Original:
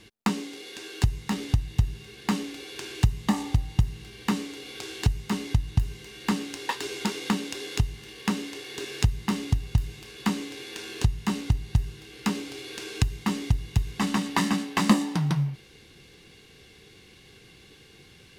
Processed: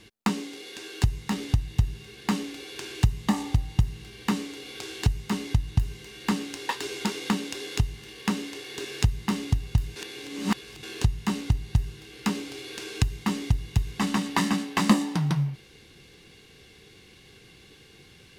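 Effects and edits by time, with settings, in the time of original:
9.96–10.83 reverse

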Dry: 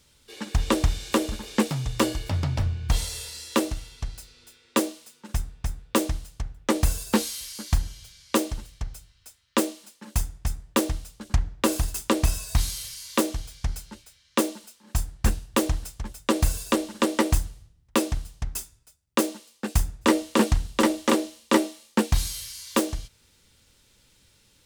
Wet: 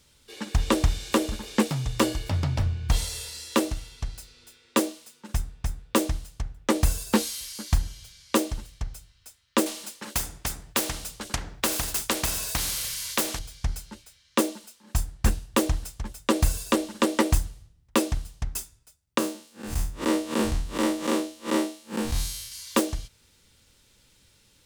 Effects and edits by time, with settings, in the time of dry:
9.66–13.39 spectral compressor 2:1
19.18–22.52 time blur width 0.111 s

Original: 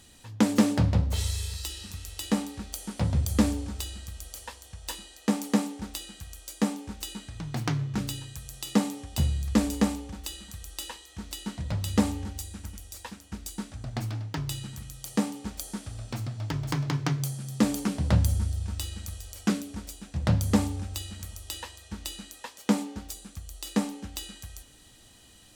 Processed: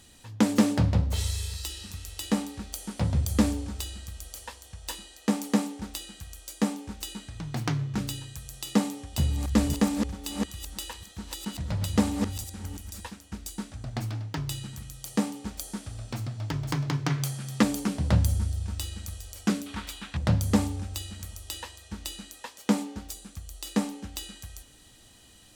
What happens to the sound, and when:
8.8–13.08 reverse delay 0.331 s, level -6 dB
17.1–17.63 bell 1800 Hz +8 dB 2.5 oct
19.66–20.17 band shelf 1900 Hz +12 dB 2.5 oct

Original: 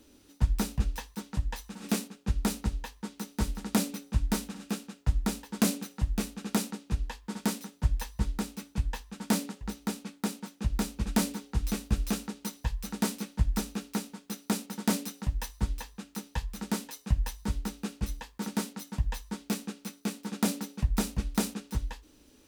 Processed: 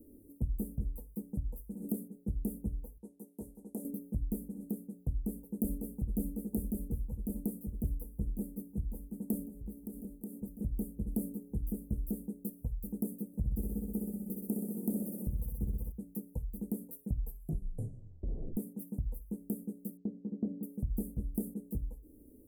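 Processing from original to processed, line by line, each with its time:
2.98–3.85 band-pass 2300 Hz, Q 0.51
5.09–6.16 echo throw 0.55 s, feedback 70%, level -4 dB
9.48–10.4 compressor 4:1, threshold -41 dBFS
13.27–15.92 flutter echo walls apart 10.7 m, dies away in 1.1 s
17.18 tape stop 1.39 s
19.97–20.63 tape spacing loss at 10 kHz 43 dB
whole clip: inverse Chebyshev band-stop 1500–4300 Hz, stop band 70 dB; notches 60/120/180 Hz; compressor 2:1, threshold -42 dBFS; gain +3.5 dB

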